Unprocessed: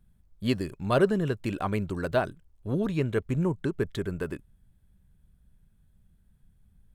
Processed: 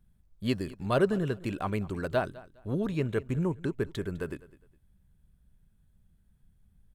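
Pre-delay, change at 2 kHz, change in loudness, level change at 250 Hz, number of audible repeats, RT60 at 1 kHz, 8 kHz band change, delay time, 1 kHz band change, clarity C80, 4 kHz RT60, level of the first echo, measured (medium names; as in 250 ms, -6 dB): no reverb, -2.5 dB, -2.5 dB, -2.5 dB, 2, no reverb, -2.5 dB, 205 ms, -2.5 dB, no reverb, no reverb, -20.0 dB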